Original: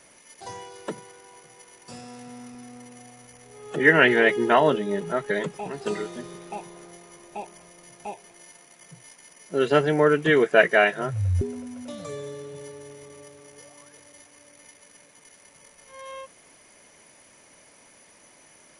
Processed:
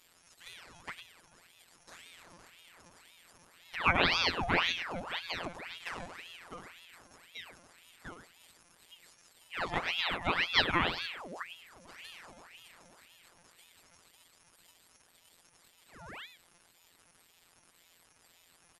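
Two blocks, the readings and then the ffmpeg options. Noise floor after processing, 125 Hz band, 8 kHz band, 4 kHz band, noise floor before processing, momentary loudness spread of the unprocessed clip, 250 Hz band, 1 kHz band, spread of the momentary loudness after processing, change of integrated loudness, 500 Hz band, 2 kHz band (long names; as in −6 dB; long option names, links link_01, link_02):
−66 dBFS, −14.5 dB, −9.5 dB, +1.5 dB, −55 dBFS, 22 LU, −15.0 dB, −8.0 dB, 23 LU, −10.5 dB, −20.0 dB, −10.0 dB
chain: -filter_complex "[0:a]asplit=2[link_01][link_02];[link_02]adelay=105,volume=-9dB,highshelf=frequency=4000:gain=-2.36[link_03];[link_01][link_03]amix=inputs=2:normalize=0,afftfilt=real='hypot(re,im)*cos(PI*b)':imag='0':win_size=1024:overlap=0.75,aeval=exprs='val(0)*sin(2*PI*1700*n/s+1700*0.8/1.9*sin(2*PI*1.9*n/s))':channel_layout=same,volume=-4.5dB"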